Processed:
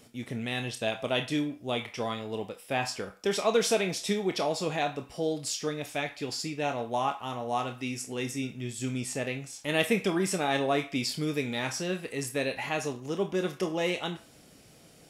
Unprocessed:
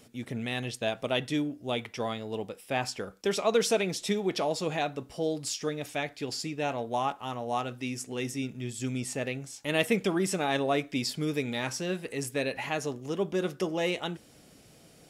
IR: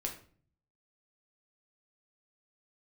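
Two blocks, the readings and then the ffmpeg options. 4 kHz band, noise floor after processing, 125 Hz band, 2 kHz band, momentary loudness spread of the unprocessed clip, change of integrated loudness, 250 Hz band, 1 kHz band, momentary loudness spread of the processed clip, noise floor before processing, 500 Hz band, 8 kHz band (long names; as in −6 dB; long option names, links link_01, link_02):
+1.0 dB, −56 dBFS, 0.0 dB, +1.0 dB, 8 LU, +0.5 dB, 0.0 dB, +1.0 dB, 8 LU, −56 dBFS, 0.0 dB, +1.0 dB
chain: -filter_complex "[0:a]asplit=2[link_01][link_02];[link_02]highpass=frequency=760:width=0.5412,highpass=frequency=760:width=1.3066[link_03];[1:a]atrim=start_sample=2205,adelay=27[link_04];[link_03][link_04]afir=irnorm=-1:irlink=0,volume=-6dB[link_05];[link_01][link_05]amix=inputs=2:normalize=0"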